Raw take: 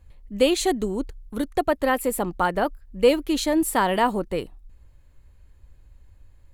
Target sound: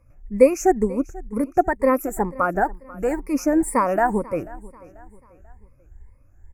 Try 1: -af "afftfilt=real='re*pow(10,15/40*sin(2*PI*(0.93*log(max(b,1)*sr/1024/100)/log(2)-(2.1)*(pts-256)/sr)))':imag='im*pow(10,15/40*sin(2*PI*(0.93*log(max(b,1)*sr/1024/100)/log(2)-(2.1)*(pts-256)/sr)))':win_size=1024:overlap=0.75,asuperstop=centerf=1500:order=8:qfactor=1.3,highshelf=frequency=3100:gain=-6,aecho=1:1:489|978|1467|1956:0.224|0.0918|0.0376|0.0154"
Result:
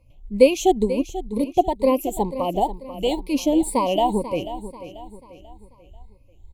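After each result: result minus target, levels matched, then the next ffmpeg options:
4,000 Hz band +17.0 dB; echo-to-direct +8 dB
-af "afftfilt=real='re*pow(10,15/40*sin(2*PI*(0.93*log(max(b,1)*sr/1024/100)/log(2)-(2.1)*(pts-256)/sr)))':imag='im*pow(10,15/40*sin(2*PI*(0.93*log(max(b,1)*sr/1024/100)/log(2)-(2.1)*(pts-256)/sr)))':win_size=1024:overlap=0.75,asuperstop=centerf=3500:order=8:qfactor=1.3,highshelf=frequency=3100:gain=-6,aecho=1:1:489|978|1467|1956:0.224|0.0918|0.0376|0.0154"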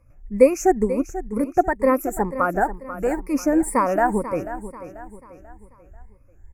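echo-to-direct +8 dB
-af "afftfilt=real='re*pow(10,15/40*sin(2*PI*(0.93*log(max(b,1)*sr/1024/100)/log(2)-(2.1)*(pts-256)/sr)))':imag='im*pow(10,15/40*sin(2*PI*(0.93*log(max(b,1)*sr/1024/100)/log(2)-(2.1)*(pts-256)/sr)))':win_size=1024:overlap=0.75,asuperstop=centerf=3500:order=8:qfactor=1.3,highshelf=frequency=3100:gain=-6,aecho=1:1:489|978|1467:0.0891|0.0365|0.015"

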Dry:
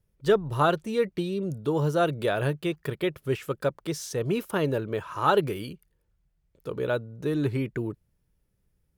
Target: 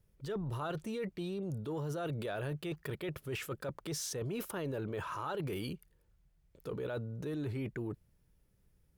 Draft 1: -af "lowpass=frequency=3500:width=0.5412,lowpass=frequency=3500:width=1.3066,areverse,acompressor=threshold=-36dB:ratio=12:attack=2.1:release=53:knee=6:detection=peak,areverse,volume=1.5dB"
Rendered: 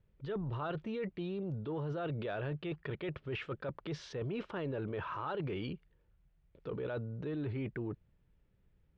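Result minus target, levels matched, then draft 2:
4,000 Hz band −3.0 dB
-af "areverse,acompressor=threshold=-36dB:ratio=12:attack=2.1:release=53:knee=6:detection=peak,areverse,volume=1.5dB"

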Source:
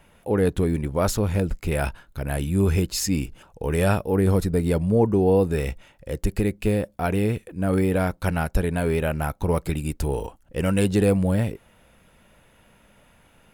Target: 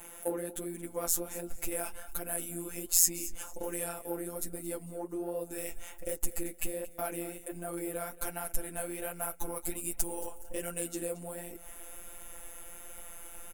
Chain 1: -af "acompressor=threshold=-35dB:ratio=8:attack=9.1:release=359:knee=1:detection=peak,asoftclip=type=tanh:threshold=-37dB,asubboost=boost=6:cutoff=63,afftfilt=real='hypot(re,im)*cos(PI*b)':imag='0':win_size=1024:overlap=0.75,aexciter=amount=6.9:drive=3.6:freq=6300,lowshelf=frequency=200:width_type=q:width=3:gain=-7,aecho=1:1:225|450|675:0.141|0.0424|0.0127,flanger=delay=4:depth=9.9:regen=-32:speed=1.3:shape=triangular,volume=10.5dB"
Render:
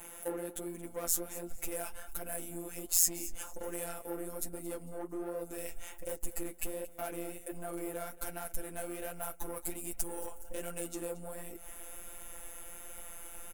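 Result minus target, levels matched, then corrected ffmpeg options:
soft clipping: distortion +13 dB
-af "acompressor=threshold=-35dB:ratio=8:attack=9.1:release=359:knee=1:detection=peak,asoftclip=type=tanh:threshold=-27dB,asubboost=boost=6:cutoff=63,afftfilt=real='hypot(re,im)*cos(PI*b)':imag='0':win_size=1024:overlap=0.75,aexciter=amount=6.9:drive=3.6:freq=6300,lowshelf=frequency=200:width_type=q:width=3:gain=-7,aecho=1:1:225|450|675:0.141|0.0424|0.0127,flanger=delay=4:depth=9.9:regen=-32:speed=1.3:shape=triangular,volume=10.5dB"

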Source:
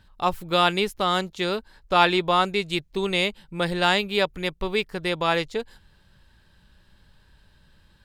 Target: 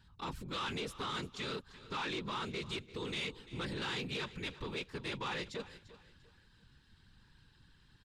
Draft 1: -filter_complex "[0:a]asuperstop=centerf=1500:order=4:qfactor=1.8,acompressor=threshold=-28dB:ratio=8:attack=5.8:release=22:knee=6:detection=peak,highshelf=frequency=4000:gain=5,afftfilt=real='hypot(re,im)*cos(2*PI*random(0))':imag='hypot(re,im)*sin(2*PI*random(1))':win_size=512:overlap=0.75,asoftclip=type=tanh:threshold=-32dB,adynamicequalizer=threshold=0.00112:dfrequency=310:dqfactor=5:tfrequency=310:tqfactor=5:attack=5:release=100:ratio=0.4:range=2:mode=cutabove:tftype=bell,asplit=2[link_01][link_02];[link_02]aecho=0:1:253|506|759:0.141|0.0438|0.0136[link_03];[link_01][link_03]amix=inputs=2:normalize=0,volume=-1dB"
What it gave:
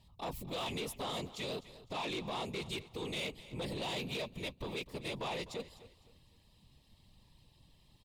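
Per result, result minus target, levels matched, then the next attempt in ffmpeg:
echo 91 ms early; 8,000 Hz band +3.5 dB; 500 Hz band +2.5 dB
-filter_complex "[0:a]asuperstop=centerf=1500:order=4:qfactor=1.8,acompressor=threshold=-28dB:ratio=8:attack=5.8:release=22:knee=6:detection=peak,highshelf=frequency=4000:gain=5,afftfilt=real='hypot(re,im)*cos(2*PI*random(0))':imag='hypot(re,im)*sin(2*PI*random(1))':win_size=512:overlap=0.75,asoftclip=type=tanh:threshold=-32dB,adynamicequalizer=threshold=0.00112:dfrequency=310:dqfactor=5:tfrequency=310:tqfactor=5:attack=5:release=100:ratio=0.4:range=2:mode=cutabove:tftype=bell,asplit=2[link_01][link_02];[link_02]aecho=0:1:344|688|1032:0.141|0.0438|0.0136[link_03];[link_01][link_03]amix=inputs=2:normalize=0,volume=-1dB"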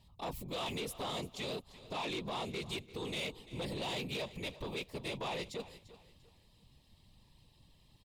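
8,000 Hz band +3.5 dB; 500 Hz band +2.5 dB
-filter_complex "[0:a]asuperstop=centerf=1500:order=4:qfactor=1.8,acompressor=threshold=-28dB:ratio=8:attack=5.8:release=22:knee=6:detection=peak,highshelf=frequency=4000:gain=5,afftfilt=real='hypot(re,im)*cos(2*PI*random(0))':imag='hypot(re,im)*sin(2*PI*random(1))':win_size=512:overlap=0.75,asoftclip=type=tanh:threshold=-32dB,adynamicequalizer=threshold=0.00112:dfrequency=310:dqfactor=5:tfrequency=310:tqfactor=5:attack=5:release=100:ratio=0.4:range=2:mode=cutabove:tftype=bell,lowpass=7200,asplit=2[link_01][link_02];[link_02]aecho=0:1:344|688|1032:0.141|0.0438|0.0136[link_03];[link_01][link_03]amix=inputs=2:normalize=0,volume=-1dB"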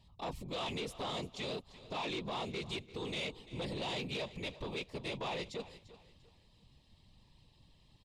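500 Hz band +2.5 dB
-filter_complex "[0:a]asuperstop=centerf=640:order=4:qfactor=1.8,acompressor=threshold=-28dB:ratio=8:attack=5.8:release=22:knee=6:detection=peak,highshelf=frequency=4000:gain=5,afftfilt=real='hypot(re,im)*cos(2*PI*random(0))':imag='hypot(re,im)*sin(2*PI*random(1))':win_size=512:overlap=0.75,asoftclip=type=tanh:threshold=-32dB,adynamicequalizer=threshold=0.00112:dfrequency=310:dqfactor=5:tfrequency=310:tqfactor=5:attack=5:release=100:ratio=0.4:range=2:mode=cutabove:tftype=bell,lowpass=7200,asplit=2[link_01][link_02];[link_02]aecho=0:1:344|688|1032:0.141|0.0438|0.0136[link_03];[link_01][link_03]amix=inputs=2:normalize=0,volume=-1dB"

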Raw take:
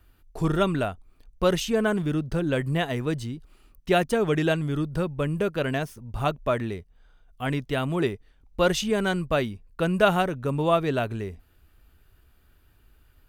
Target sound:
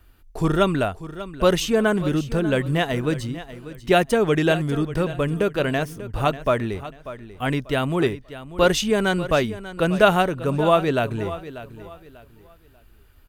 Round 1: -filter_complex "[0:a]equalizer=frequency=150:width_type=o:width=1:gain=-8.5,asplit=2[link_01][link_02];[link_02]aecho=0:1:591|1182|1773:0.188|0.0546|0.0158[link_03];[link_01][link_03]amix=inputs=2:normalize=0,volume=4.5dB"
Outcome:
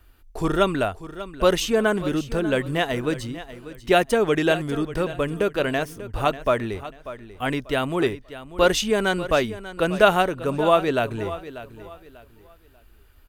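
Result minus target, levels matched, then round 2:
125 Hz band −4.5 dB
-filter_complex "[0:a]equalizer=frequency=150:width_type=o:width=1:gain=-2,asplit=2[link_01][link_02];[link_02]aecho=0:1:591|1182|1773:0.188|0.0546|0.0158[link_03];[link_01][link_03]amix=inputs=2:normalize=0,volume=4.5dB"

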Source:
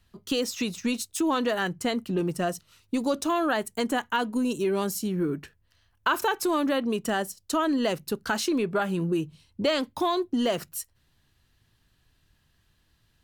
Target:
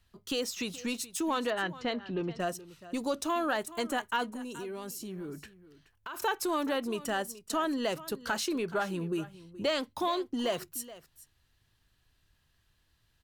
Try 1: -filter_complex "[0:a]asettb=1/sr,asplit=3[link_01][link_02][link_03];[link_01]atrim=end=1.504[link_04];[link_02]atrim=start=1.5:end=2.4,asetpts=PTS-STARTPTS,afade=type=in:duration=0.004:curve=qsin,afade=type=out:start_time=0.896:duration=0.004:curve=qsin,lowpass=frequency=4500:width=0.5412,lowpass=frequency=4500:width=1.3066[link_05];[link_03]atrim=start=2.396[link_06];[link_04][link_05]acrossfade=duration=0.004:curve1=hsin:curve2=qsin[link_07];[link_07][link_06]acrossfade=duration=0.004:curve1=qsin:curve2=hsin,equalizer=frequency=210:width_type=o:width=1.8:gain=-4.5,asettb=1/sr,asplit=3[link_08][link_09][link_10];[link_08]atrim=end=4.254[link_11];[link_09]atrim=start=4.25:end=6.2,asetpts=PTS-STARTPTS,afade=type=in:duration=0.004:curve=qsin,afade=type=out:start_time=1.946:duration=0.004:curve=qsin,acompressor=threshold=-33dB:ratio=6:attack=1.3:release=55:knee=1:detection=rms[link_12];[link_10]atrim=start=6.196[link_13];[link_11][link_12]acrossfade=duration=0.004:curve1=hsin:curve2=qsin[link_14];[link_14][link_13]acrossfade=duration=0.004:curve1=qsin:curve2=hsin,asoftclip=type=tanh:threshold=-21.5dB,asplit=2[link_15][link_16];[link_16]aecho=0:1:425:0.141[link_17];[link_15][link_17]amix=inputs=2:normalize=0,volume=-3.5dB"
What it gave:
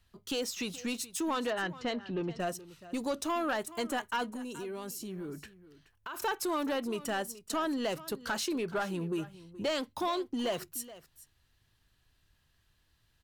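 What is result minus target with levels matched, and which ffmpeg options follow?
soft clipping: distortion +16 dB
-filter_complex "[0:a]asettb=1/sr,asplit=3[link_01][link_02][link_03];[link_01]atrim=end=1.504[link_04];[link_02]atrim=start=1.5:end=2.4,asetpts=PTS-STARTPTS,afade=type=in:duration=0.004:curve=qsin,afade=type=out:start_time=0.896:duration=0.004:curve=qsin,lowpass=frequency=4500:width=0.5412,lowpass=frequency=4500:width=1.3066[link_05];[link_03]atrim=start=2.396[link_06];[link_04][link_05]acrossfade=duration=0.004:curve1=hsin:curve2=qsin[link_07];[link_07][link_06]acrossfade=duration=0.004:curve1=qsin:curve2=hsin,equalizer=frequency=210:width_type=o:width=1.8:gain=-4.5,asettb=1/sr,asplit=3[link_08][link_09][link_10];[link_08]atrim=end=4.254[link_11];[link_09]atrim=start=4.25:end=6.2,asetpts=PTS-STARTPTS,afade=type=in:duration=0.004:curve=qsin,afade=type=out:start_time=1.946:duration=0.004:curve=qsin,acompressor=threshold=-33dB:ratio=6:attack=1.3:release=55:knee=1:detection=rms[link_12];[link_10]atrim=start=6.196[link_13];[link_11][link_12]acrossfade=duration=0.004:curve1=hsin:curve2=qsin[link_14];[link_14][link_13]acrossfade=duration=0.004:curve1=qsin:curve2=hsin,asoftclip=type=tanh:threshold=-11.5dB,asplit=2[link_15][link_16];[link_16]aecho=0:1:425:0.141[link_17];[link_15][link_17]amix=inputs=2:normalize=0,volume=-3.5dB"

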